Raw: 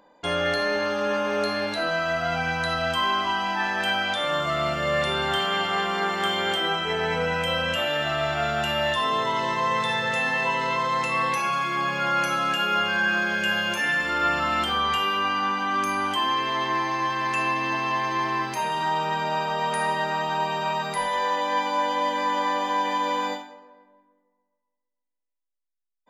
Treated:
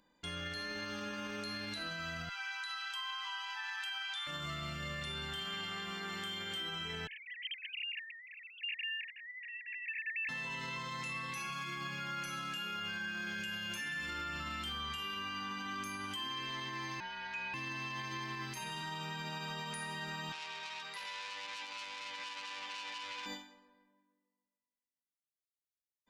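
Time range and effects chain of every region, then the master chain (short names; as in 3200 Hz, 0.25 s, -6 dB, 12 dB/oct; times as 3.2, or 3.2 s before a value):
2.29–4.27 Chebyshev high-pass 790 Hz, order 8 + high shelf 5900 Hz -5.5 dB
7.07–10.29 sine-wave speech + Chebyshev high-pass 1700 Hz, order 10
17–17.54 HPF 750 Hz + frequency shift -140 Hz + air absorption 200 m
20.32–23.26 three-band isolator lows -21 dB, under 420 Hz, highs -13 dB, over 4900 Hz + core saturation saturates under 3300 Hz
whole clip: passive tone stack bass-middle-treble 6-0-2; limiter -41.5 dBFS; gain +9 dB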